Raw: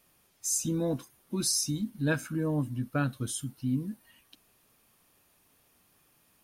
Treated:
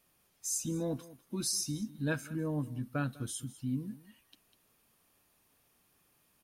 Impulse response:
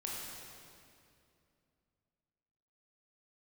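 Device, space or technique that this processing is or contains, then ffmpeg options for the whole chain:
ducked delay: -filter_complex "[0:a]asplit=3[a][b][c];[b]adelay=199,volume=-7.5dB[d];[c]apad=whole_len=292715[e];[d][e]sidechaincompress=threshold=-38dB:ratio=8:attack=16:release=1040[f];[a][f]amix=inputs=2:normalize=0,volume=-5dB"

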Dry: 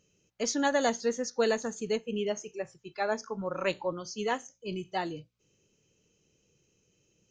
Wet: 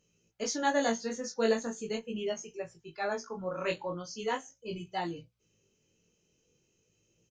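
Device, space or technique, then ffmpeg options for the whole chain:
double-tracked vocal: -filter_complex "[0:a]asplit=2[a][b];[b]adelay=18,volume=-7dB[c];[a][c]amix=inputs=2:normalize=0,flanger=delay=17:depth=5.8:speed=0.4"

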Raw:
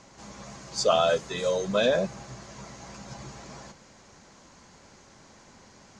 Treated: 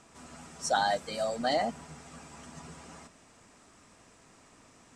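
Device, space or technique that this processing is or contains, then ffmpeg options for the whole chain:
nightcore: -af "asetrate=53361,aresample=44100,volume=-5dB"

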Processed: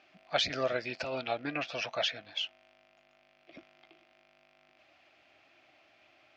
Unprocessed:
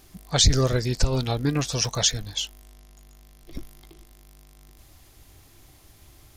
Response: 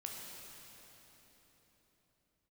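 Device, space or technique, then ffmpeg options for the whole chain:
phone earpiece: -filter_complex "[0:a]highpass=410,equalizer=f=430:t=q:w=4:g=-9,equalizer=f=640:t=q:w=4:g=9,equalizer=f=1k:t=q:w=4:g=-6,equalizer=f=1.4k:t=q:w=4:g=3,equalizer=f=2.5k:t=q:w=4:g=9,equalizer=f=3.8k:t=q:w=4:g=-5,lowpass=f=3.9k:w=0.5412,lowpass=f=3.9k:w=1.3066,asettb=1/sr,asplit=3[a][b][c];[a]atrim=end=1.164[d];[b]atrim=start=1.16:end=2.32,asetpts=PTS-STARTPTS,afade=t=in:d=0.004:c=qsin,afade=t=out:st=1.156:d=0.004:c=qsin,lowpass=5.5k[e];[c]atrim=start=2.316[f];[d][e]acrossfade=d=0.004:c1=hsin:c2=qsin[g];[g][f]acrossfade=d=0.004:c1=qsin:c2=hsin,volume=-4.5dB"

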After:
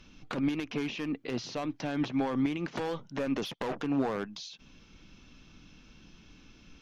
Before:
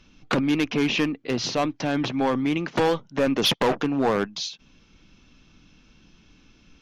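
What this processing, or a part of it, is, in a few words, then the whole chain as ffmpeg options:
de-esser from a sidechain: -filter_complex "[0:a]asplit=2[a][b];[b]highpass=f=5.4k:p=1,apad=whole_len=300693[c];[a][c]sidechaincompress=threshold=-46dB:ratio=4:attack=3.9:release=89"

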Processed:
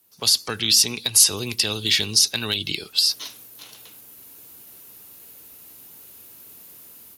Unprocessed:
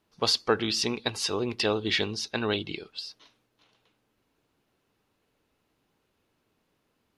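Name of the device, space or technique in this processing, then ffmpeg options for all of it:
FM broadcast chain: -filter_complex "[0:a]highpass=47,dynaudnorm=f=230:g=3:m=16dB,acrossover=split=190|2100[a][b][c];[a]acompressor=threshold=-31dB:ratio=4[d];[b]acompressor=threshold=-33dB:ratio=4[e];[c]acompressor=threshold=-23dB:ratio=4[f];[d][e][f]amix=inputs=3:normalize=0,aemphasis=mode=production:type=50fm,alimiter=limit=-10.5dB:level=0:latency=1:release=107,asoftclip=type=hard:threshold=-12dB,lowpass=f=15k:w=0.5412,lowpass=f=15k:w=1.3066,aemphasis=mode=production:type=50fm"

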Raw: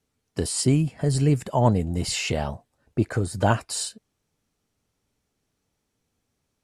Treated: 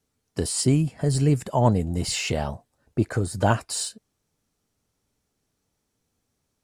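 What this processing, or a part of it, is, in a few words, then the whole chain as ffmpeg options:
exciter from parts: -filter_complex "[0:a]asplit=2[a][b];[b]highpass=2.3k,asoftclip=type=tanh:threshold=-37.5dB,highpass=2.1k,volume=-9.5dB[c];[a][c]amix=inputs=2:normalize=0"

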